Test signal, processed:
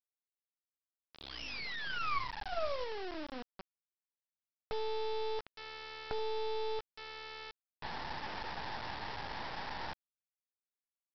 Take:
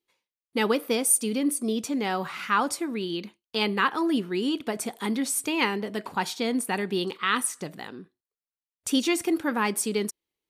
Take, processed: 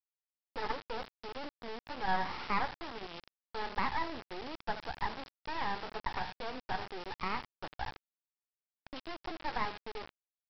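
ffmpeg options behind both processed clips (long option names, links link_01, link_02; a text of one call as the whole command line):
ffmpeg -i in.wav -af "acompressor=threshold=-29dB:ratio=2.5,bandpass=frequency=870:width_type=q:width=6.8:csg=0,afftfilt=real='re*lt(hypot(re,im),0.126)':imag='im*lt(hypot(re,im),0.126)':win_size=1024:overlap=0.75,aecho=1:1:16|76:0.237|0.158,aresample=11025,acrusher=bits=6:dc=4:mix=0:aa=0.000001,aresample=44100,volume=13dB" out.wav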